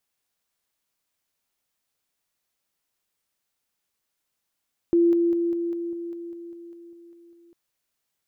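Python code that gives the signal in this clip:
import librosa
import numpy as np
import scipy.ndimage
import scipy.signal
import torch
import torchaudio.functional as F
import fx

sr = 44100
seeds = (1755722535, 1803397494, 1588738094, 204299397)

y = fx.level_ladder(sr, hz=341.0, from_db=-15.0, step_db=-3.0, steps=13, dwell_s=0.2, gap_s=0.0)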